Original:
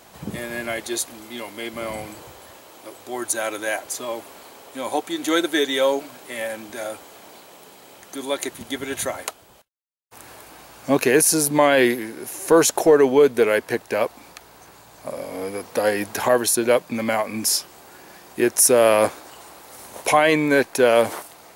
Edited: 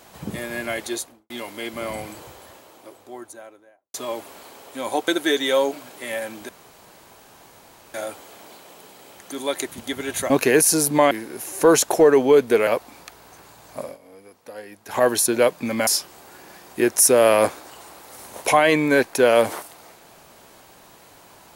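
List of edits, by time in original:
0:00.87–0:01.30: fade out and dull
0:02.19–0:03.94: fade out and dull
0:05.08–0:05.36: remove
0:06.77: splice in room tone 1.45 s
0:09.13–0:10.90: remove
0:11.71–0:11.98: remove
0:13.54–0:13.96: remove
0:15.10–0:16.32: duck −17.5 dB, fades 0.17 s
0:17.16–0:17.47: remove

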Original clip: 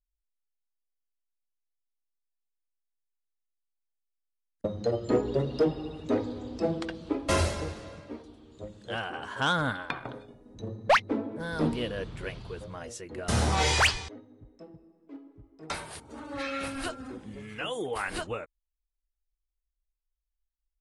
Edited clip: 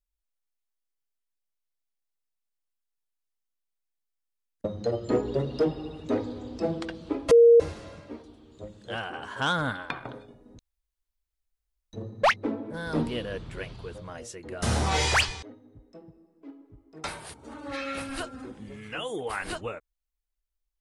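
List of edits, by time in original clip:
0:07.31–0:07.60: beep over 468 Hz −11.5 dBFS
0:10.59: splice in room tone 1.34 s

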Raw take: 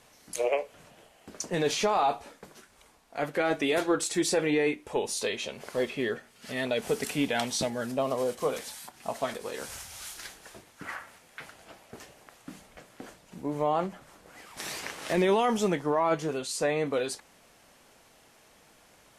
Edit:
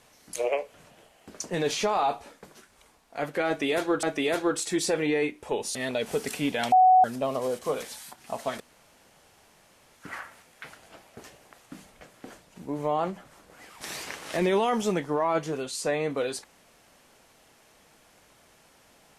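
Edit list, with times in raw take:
0:03.47–0:04.03: repeat, 2 plays
0:05.19–0:06.51: remove
0:07.48–0:07.80: beep over 744 Hz −13.5 dBFS
0:09.36–0:10.70: fill with room tone

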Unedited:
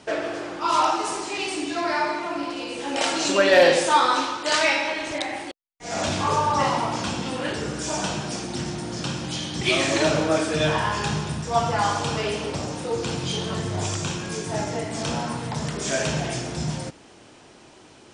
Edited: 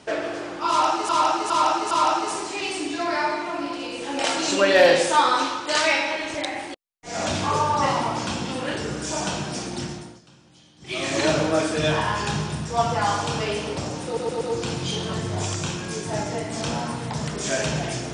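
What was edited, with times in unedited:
0:00.68–0:01.09: repeat, 4 plays
0:08.54–0:10.01: duck −23.5 dB, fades 0.44 s
0:12.82: stutter 0.12 s, 4 plays

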